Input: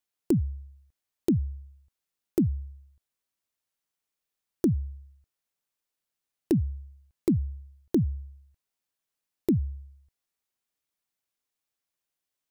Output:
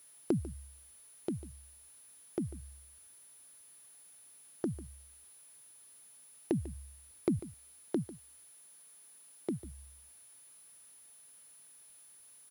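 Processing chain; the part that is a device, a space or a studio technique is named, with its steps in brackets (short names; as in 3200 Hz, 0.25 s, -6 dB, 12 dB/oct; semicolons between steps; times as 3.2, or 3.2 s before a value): medium wave at night (BPF 120–3500 Hz; compressor 4:1, threshold -30 dBFS, peak gain reduction 9 dB; tremolo 0.28 Hz, depth 60%; whine 10000 Hz -58 dBFS; white noise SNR 24 dB); 7.39–9.64 HPF 130 Hz 24 dB/oct; echo 0.146 s -16.5 dB; gain +1.5 dB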